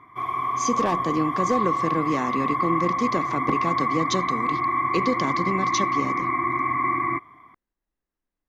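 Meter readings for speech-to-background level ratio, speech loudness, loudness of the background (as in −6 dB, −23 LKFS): −3.0 dB, −27.5 LKFS, −24.5 LKFS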